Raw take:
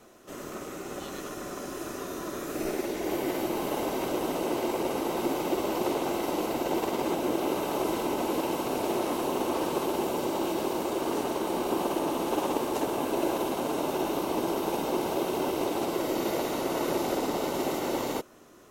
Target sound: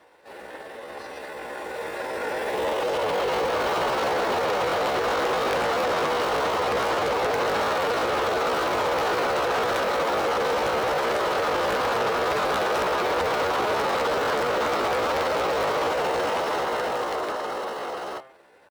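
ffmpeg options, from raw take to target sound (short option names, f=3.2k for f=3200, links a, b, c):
-filter_complex "[0:a]aeval=exprs='(mod(7.94*val(0)+1,2)-1)/7.94':c=same,alimiter=limit=-24dB:level=0:latency=1:release=15,dynaudnorm=f=230:g=21:m=14dB,bass=f=250:g=-7,treble=f=4k:g=-14,acontrast=84,bandreject=f=93.49:t=h:w=4,bandreject=f=186.98:t=h:w=4,bandreject=f=280.47:t=h:w=4,bandreject=f=373.96:t=h:w=4,bandreject=f=467.45:t=h:w=4,bandreject=f=560.94:t=h:w=4,bandreject=f=654.43:t=h:w=4,bandreject=f=747.92:t=h:w=4,bandreject=f=841.41:t=h:w=4,bandreject=f=934.9:t=h:w=4,bandreject=f=1.02839k:t=h:w=4,bandreject=f=1.12188k:t=h:w=4,bandreject=f=1.21537k:t=h:w=4,bandreject=f=1.30886k:t=h:w=4,bandreject=f=1.40235k:t=h:w=4,bandreject=f=1.49584k:t=h:w=4,bandreject=f=1.58933k:t=h:w=4,bandreject=f=1.68282k:t=h:w=4,bandreject=f=1.77631k:t=h:w=4,bandreject=f=1.8698k:t=h:w=4,bandreject=f=1.96329k:t=h:w=4,bandreject=f=2.05678k:t=h:w=4,bandreject=f=2.15027k:t=h:w=4,bandreject=f=2.24376k:t=h:w=4,aeval=exprs='0.708*(cos(1*acos(clip(val(0)/0.708,-1,1)))-cos(1*PI/2))+0.2*(cos(3*acos(clip(val(0)/0.708,-1,1)))-cos(3*PI/2))+0.178*(cos(5*acos(clip(val(0)/0.708,-1,1)))-cos(5*PI/2))':c=same,asplit=2[a][b];[b]adelay=64,lowpass=f=1k:p=1,volume=-23dB,asplit=2[c][d];[d]adelay=64,lowpass=f=1k:p=1,volume=0.16[e];[a][c][e]amix=inputs=3:normalize=0,asetrate=62367,aresample=44100,atempo=0.707107,highpass=48,volume=-9dB"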